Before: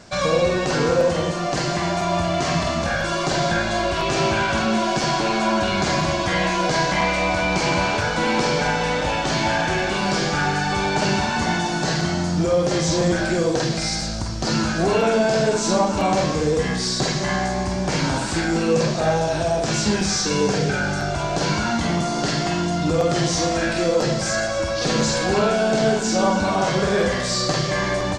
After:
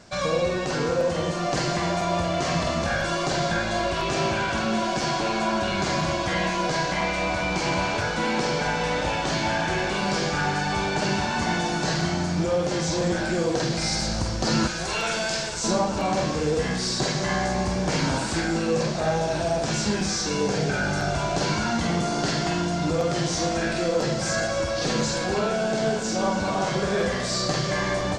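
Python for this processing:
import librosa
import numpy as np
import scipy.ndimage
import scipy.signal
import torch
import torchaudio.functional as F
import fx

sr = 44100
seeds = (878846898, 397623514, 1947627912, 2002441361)

y = fx.tone_stack(x, sr, knobs='10-0-10', at=(14.67, 15.64))
y = fx.rider(y, sr, range_db=10, speed_s=0.5)
y = fx.echo_diffused(y, sr, ms=1525, feedback_pct=67, wet_db=-14.0)
y = y * 10.0 ** (-4.0 / 20.0)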